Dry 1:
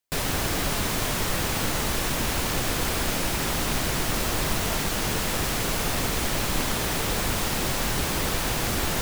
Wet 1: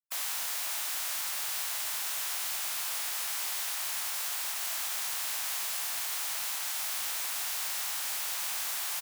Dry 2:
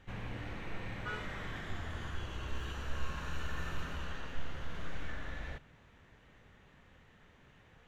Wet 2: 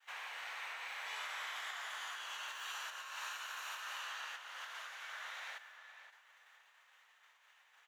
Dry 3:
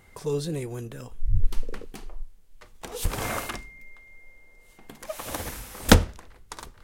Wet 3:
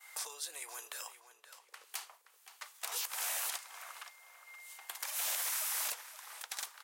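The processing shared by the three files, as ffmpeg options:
-filter_complex "[0:a]acompressor=threshold=-34dB:ratio=20,agate=range=-33dB:threshold=-55dB:ratio=3:detection=peak,highpass=f=840:w=0.5412,highpass=f=840:w=1.3066,highshelf=f=5.3k:g=9,asplit=2[a][b];[b]adelay=523,lowpass=f=4.2k:p=1,volume=-11.5dB,asplit=2[c][d];[d]adelay=523,lowpass=f=4.2k:p=1,volume=0.28,asplit=2[e][f];[f]adelay=523,lowpass=f=4.2k:p=1,volume=0.28[g];[c][e][g]amix=inputs=3:normalize=0[h];[a][h]amix=inputs=2:normalize=0,afftfilt=real='re*lt(hypot(re,im),0.0224)':imag='im*lt(hypot(re,im),0.0224)':win_size=1024:overlap=0.75,asoftclip=type=hard:threshold=-32dB,volume=3.5dB"

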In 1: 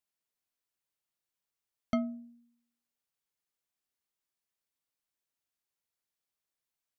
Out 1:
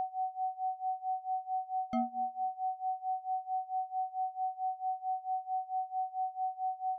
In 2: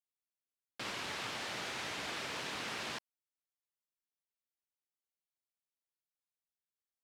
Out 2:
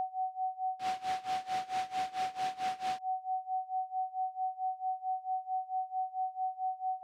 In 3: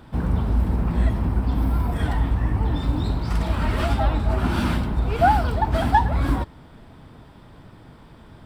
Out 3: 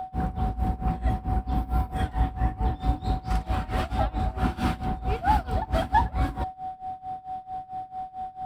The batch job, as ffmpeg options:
-af "aeval=exprs='val(0)+0.0447*sin(2*PI*750*n/s)':c=same,tremolo=f=4.5:d=0.9,volume=-2dB"

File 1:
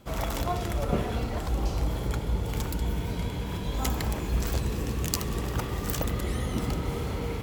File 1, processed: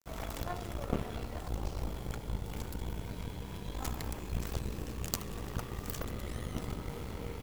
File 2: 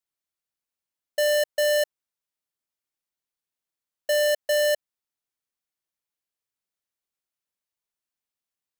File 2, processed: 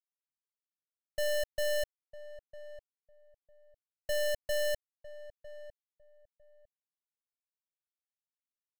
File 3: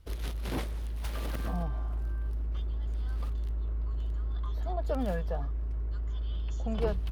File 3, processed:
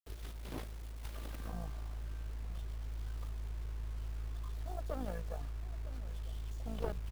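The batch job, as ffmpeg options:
-filter_complex "[0:a]aeval=exprs='0.531*(cos(1*acos(clip(val(0)/0.531,-1,1)))-cos(1*PI/2))+0.106*(cos(3*acos(clip(val(0)/0.531,-1,1)))-cos(3*PI/2))+0.119*(cos(4*acos(clip(val(0)/0.531,-1,1)))-cos(4*PI/2))':c=same,acrusher=bits=8:mix=0:aa=0.000001,asplit=2[a][b];[b]adelay=953,lowpass=f=870:p=1,volume=-14dB,asplit=2[c][d];[d]adelay=953,lowpass=f=870:p=1,volume=0.21[e];[a][c][e]amix=inputs=3:normalize=0,volume=-3dB"

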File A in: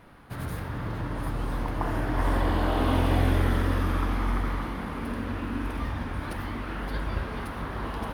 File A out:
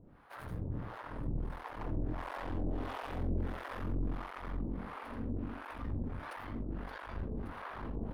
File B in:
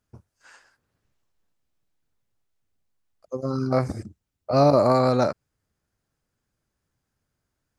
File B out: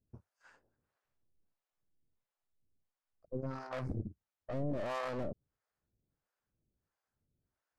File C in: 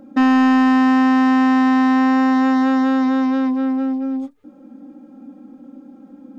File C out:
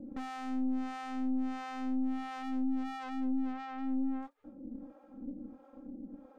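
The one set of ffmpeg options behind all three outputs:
-filter_complex "[0:a]aeval=exprs='(tanh(35.5*val(0)+0.6)-tanh(0.6))/35.5':c=same,highshelf=f=2.6k:g=-12,acrossover=split=540[a][b];[a]aeval=exprs='val(0)*(1-1/2+1/2*cos(2*PI*1.5*n/s))':c=same[c];[b]aeval=exprs='val(0)*(1-1/2-1/2*cos(2*PI*1.5*n/s))':c=same[d];[c][d]amix=inputs=2:normalize=0,volume=1dB"

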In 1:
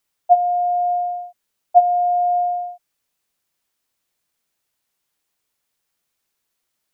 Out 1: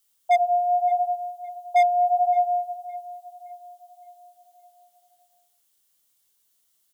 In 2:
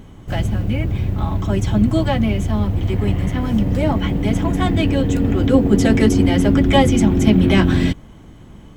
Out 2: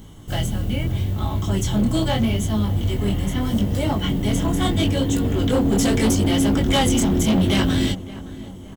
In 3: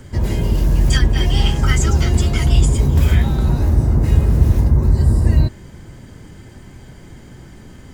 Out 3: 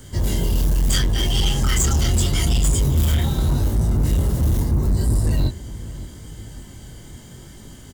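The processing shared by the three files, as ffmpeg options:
-filter_complex "[0:a]bandreject=f=2.5k:w=8.2,flanger=delay=18.5:depth=7.3:speed=0.78,aexciter=amount=2.7:drive=3.9:freq=2.7k,volume=14dB,asoftclip=hard,volume=-14dB,asplit=2[a][b];[b]adelay=566,lowpass=f=1.9k:p=1,volume=-16.5dB,asplit=2[c][d];[d]adelay=566,lowpass=f=1.9k:p=1,volume=0.51,asplit=2[e][f];[f]adelay=566,lowpass=f=1.9k:p=1,volume=0.51,asplit=2[g][h];[h]adelay=566,lowpass=f=1.9k:p=1,volume=0.51,asplit=2[i][j];[j]adelay=566,lowpass=f=1.9k:p=1,volume=0.51[k];[c][e][g][i][k]amix=inputs=5:normalize=0[l];[a][l]amix=inputs=2:normalize=0"

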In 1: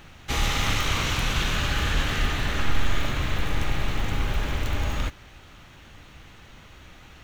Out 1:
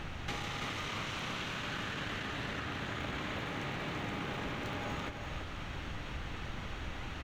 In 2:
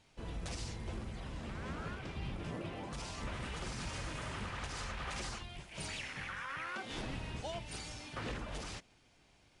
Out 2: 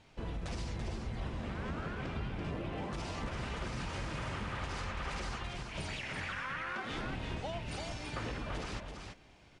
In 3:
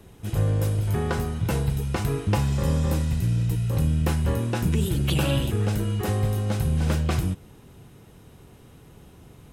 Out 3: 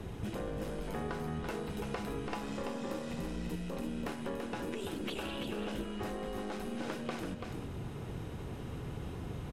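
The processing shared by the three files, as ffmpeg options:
-filter_complex "[0:a]asplit=2[a][b];[b]aeval=exprs='clip(val(0),-1,0.0473)':c=same,volume=-3dB[c];[a][c]amix=inputs=2:normalize=0,afftfilt=real='re*lt(hypot(re,im),0.501)':imag='im*lt(hypot(re,im),0.501)':win_size=1024:overlap=0.75,acompressor=threshold=-37dB:ratio=16,aemphasis=mode=reproduction:type=50kf,aecho=1:1:335:0.531,volume=2dB"

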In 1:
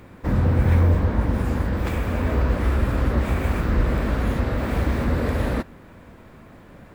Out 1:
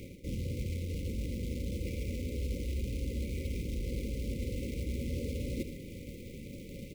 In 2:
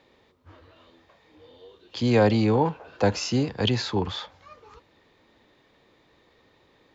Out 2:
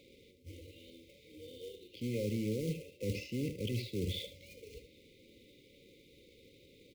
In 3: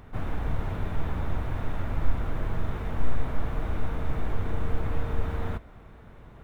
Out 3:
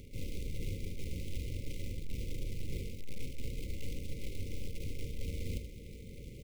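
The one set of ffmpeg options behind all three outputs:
-filter_complex "[0:a]acrossover=split=2900[a][b];[b]acompressor=threshold=-55dB:ratio=4:attack=1:release=60[c];[a][c]amix=inputs=2:normalize=0,aeval=exprs='(tanh(5.62*val(0)+0.05)-tanh(0.05))/5.62':c=same,areverse,acompressor=threshold=-34dB:ratio=16,areverse,acrusher=bits=3:mode=log:mix=0:aa=0.000001,afftfilt=real='re*(1-between(b*sr/4096,580,2000))':imag='im*(1-between(b*sr/4096,580,2000))':win_size=4096:overlap=0.75,asplit=2[d][e];[e]aecho=0:1:75:0.299[f];[d][f]amix=inputs=2:normalize=0,volume=1dB"

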